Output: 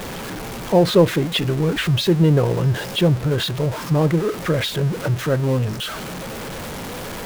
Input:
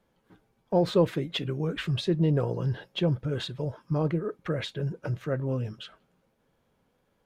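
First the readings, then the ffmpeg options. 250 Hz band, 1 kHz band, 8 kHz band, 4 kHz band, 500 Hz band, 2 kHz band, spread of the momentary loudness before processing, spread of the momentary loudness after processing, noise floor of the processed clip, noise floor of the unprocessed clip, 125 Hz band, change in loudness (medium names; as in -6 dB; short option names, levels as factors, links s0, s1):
+9.5 dB, +11.0 dB, no reading, +12.0 dB, +9.5 dB, +13.0 dB, 9 LU, 15 LU, -31 dBFS, -72 dBFS, +10.0 dB, +9.5 dB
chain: -af "aeval=exprs='val(0)+0.5*0.0237*sgn(val(0))':c=same,volume=2.51"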